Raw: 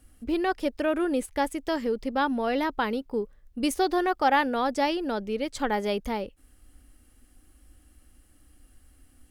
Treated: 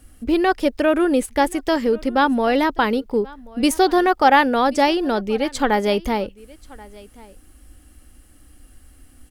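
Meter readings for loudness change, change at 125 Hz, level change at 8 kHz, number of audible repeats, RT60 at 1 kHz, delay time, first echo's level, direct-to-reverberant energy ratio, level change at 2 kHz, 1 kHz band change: +8.5 dB, can't be measured, +8.5 dB, 1, no reverb audible, 1,082 ms, −23.0 dB, no reverb audible, +8.5 dB, +8.5 dB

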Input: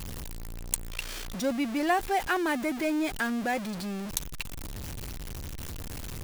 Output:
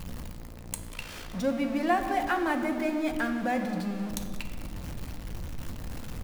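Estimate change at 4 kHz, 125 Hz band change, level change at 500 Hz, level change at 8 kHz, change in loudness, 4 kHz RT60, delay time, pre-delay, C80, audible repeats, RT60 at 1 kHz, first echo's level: −4.5 dB, +1.0 dB, +0.5 dB, −7.0 dB, 0.0 dB, 1.1 s, 192 ms, 6 ms, 8.0 dB, 1, 1.8 s, −17.5 dB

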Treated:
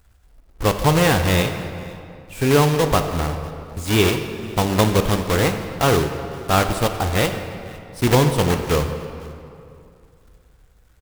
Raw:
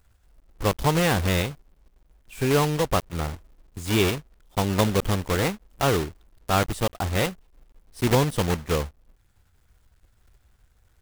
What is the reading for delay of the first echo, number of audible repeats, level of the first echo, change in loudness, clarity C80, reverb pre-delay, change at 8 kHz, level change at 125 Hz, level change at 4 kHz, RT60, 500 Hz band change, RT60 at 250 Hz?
505 ms, 1, −22.5 dB, +5.0 dB, 8.5 dB, 3 ms, +5.0 dB, +5.5 dB, +5.0 dB, 2.6 s, +6.0 dB, 2.8 s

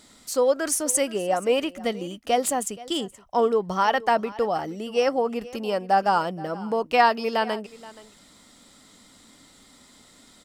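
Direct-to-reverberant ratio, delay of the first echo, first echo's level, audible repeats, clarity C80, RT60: no reverb audible, 475 ms, −19.5 dB, 1, no reverb audible, no reverb audible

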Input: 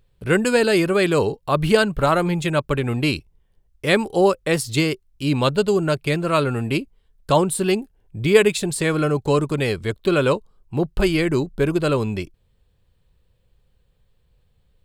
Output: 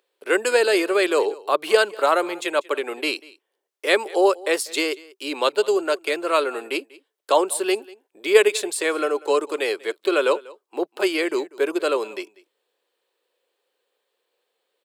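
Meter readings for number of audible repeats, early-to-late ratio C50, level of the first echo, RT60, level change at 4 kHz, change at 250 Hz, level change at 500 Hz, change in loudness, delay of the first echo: 1, no reverb audible, −22.0 dB, no reverb audible, 0.0 dB, −7.5 dB, −0.5 dB, −1.5 dB, 192 ms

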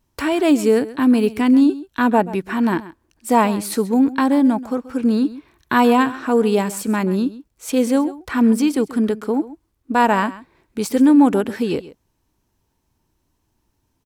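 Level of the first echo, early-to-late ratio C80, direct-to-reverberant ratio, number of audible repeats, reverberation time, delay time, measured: −17.0 dB, no reverb audible, no reverb audible, 1, no reverb audible, 132 ms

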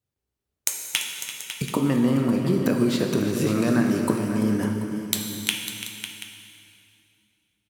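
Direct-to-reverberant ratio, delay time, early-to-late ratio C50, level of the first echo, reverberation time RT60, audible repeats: 1.0 dB, 339 ms, 2.0 dB, −12.5 dB, 2.5 s, 3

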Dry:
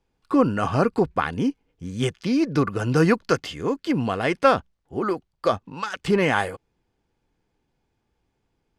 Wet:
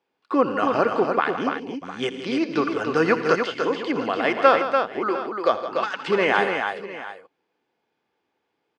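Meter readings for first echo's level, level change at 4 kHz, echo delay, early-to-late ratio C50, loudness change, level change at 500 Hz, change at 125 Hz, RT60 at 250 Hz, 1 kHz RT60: −15.0 dB, +2.0 dB, 82 ms, no reverb audible, +0.5 dB, +2.0 dB, −11.5 dB, no reverb audible, no reverb audible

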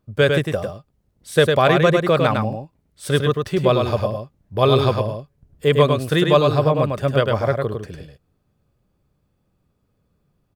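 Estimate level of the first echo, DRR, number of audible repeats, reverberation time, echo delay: −4.5 dB, no reverb audible, 1, no reverb audible, 103 ms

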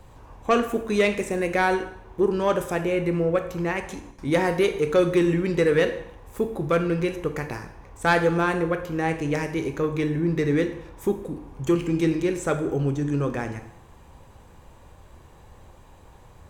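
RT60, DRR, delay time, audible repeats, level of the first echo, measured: 0.70 s, 7.0 dB, no echo audible, no echo audible, no echo audible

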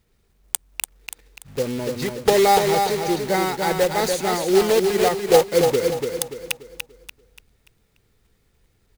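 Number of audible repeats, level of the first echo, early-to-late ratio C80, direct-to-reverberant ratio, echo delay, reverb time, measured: 4, −5.0 dB, no reverb audible, no reverb audible, 290 ms, no reverb audible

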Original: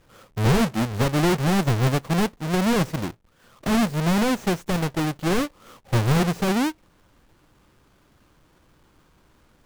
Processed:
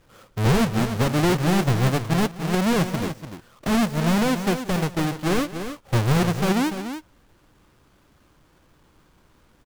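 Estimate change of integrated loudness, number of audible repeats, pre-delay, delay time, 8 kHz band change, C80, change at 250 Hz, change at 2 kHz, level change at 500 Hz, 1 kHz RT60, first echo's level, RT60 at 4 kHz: +0.5 dB, 2, no reverb audible, 179 ms, +0.5 dB, no reverb audible, +0.5 dB, +0.5 dB, +0.5 dB, no reverb audible, −18.5 dB, no reverb audible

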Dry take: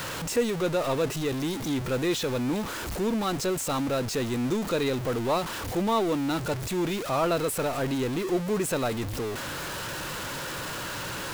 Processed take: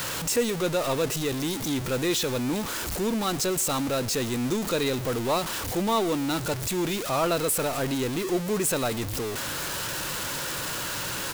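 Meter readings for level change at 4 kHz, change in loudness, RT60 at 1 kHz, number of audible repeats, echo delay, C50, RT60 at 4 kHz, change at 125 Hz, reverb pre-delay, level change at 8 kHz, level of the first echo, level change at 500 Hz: +4.0 dB, +1.5 dB, no reverb audible, 1, 115 ms, no reverb audible, no reverb audible, 0.0 dB, no reverb audible, +6.5 dB, −22.5 dB, 0.0 dB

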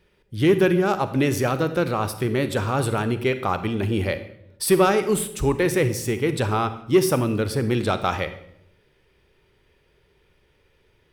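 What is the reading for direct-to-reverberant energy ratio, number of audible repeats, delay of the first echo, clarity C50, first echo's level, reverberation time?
10.5 dB, no echo audible, no echo audible, 12.0 dB, no echo audible, 0.75 s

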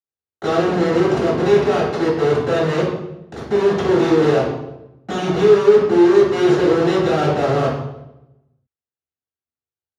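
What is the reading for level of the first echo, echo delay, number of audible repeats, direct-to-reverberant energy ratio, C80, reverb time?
no echo audible, no echo audible, no echo audible, −9.5 dB, 5.0 dB, 0.90 s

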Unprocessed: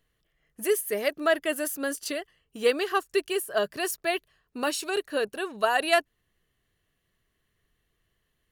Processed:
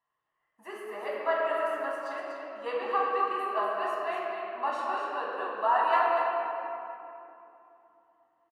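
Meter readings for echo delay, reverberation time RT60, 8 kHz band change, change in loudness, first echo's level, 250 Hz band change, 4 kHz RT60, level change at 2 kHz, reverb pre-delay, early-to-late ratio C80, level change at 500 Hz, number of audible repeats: 244 ms, 3.0 s, below −25 dB, −2.5 dB, −6.5 dB, −11.5 dB, 1.6 s, −5.0 dB, 6 ms, −2.0 dB, −4.0 dB, 1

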